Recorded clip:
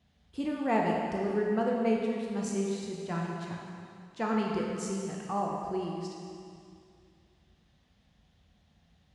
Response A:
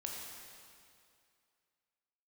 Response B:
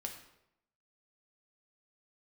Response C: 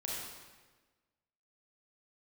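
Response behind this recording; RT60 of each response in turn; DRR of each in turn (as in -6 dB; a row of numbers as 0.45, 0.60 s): A; 2.4, 0.80, 1.3 s; -1.5, 2.0, -4.5 dB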